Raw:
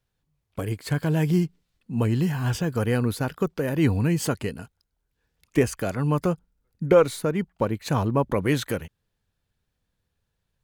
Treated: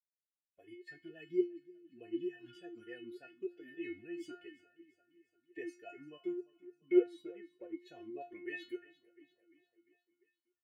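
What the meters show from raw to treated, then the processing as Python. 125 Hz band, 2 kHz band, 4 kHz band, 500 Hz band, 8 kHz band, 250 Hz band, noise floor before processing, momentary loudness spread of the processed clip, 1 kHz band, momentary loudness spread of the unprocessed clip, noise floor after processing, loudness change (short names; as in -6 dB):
under -40 dB, -17.0 dB, -21.5 dB, -14.0 dB, under -30 dB, -14.5 dB, -79 dBFS, 19 LU, under -25 dB, 11 LU, under -85 dBFS, -15.0 dB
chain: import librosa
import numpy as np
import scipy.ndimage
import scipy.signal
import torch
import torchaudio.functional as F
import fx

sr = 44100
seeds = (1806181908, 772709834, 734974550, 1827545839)

y = fx.bin_expand(x, sr, power=1.5)
y = fx.stiff_resonator(y, sr, f0_hz=350.0, decay_s=0.34, stiffness=0.002)
y = fx.echo_feedback(y, sr, ms=348, feedback_pct=58, wet_db=-20)
y = fx.vowel_sweep(y, sr, vowels='e-i', hz=3.4)
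y = y * librosa.db_to_amplitude(12.5)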